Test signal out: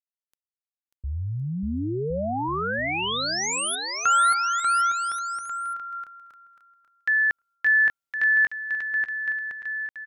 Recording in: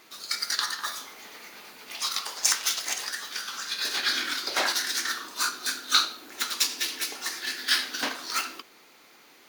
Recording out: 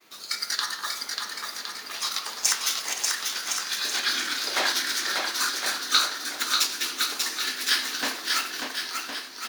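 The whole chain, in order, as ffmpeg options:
-af "agate=range=0.0224:threshold=0.00251:ratio=3:detection=peak,aecho=1:1:590|1062|1440|1742|1983:0.631|0.398|0.251|0.158|0.1"

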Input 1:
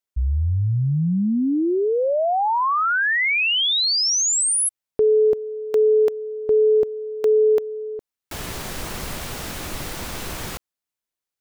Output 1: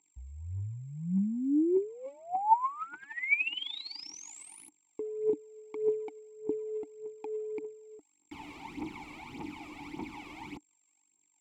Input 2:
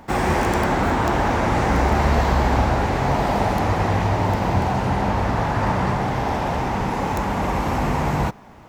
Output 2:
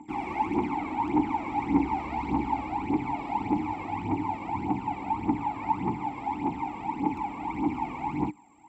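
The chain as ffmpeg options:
-filter_complex "[0:a]aeval=exprs='val(0)+0.00891*sin(2*PI*7500*n/s)':c=same,aphaser=in_gain=1:out_gain=1:delay=1.9:decay=0.71:speed=1.7:type=triangular,asplit=3[s0][s1][s2];[s0]bandpass=f=300:t=q:w=8,volume=1[s3];[s1]bandpass=f=870:t=q:w=8,volume=0.501[s4];[s2]bandpass=f=2240:t=q:w=8,volume=0.355[s5];[s3][s4][s5]amix=inputs=3:normalize=0"

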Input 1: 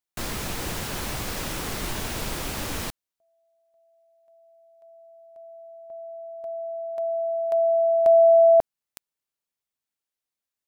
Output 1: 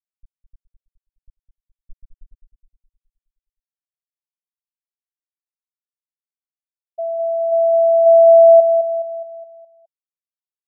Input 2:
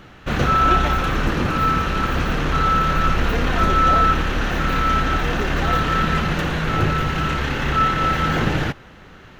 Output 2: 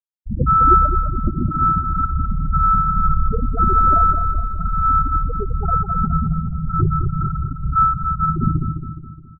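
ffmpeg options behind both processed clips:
-filter_complex "[0:a]afftfilt=real='re*gte(hypot(re,im),0.501)':imag='im*gte(hypot(re,im),0.501)':win_size=1024:overlap=0.75,asplit=2[s0][s1];[s1]aecho=0:1:209|418|627|836|1045|1254:0.398|0.191|0.0917|0.044|0.0211|0.0101[s2];[s0][s2]amix=inputs=2:normalize=0,volume=1.5"

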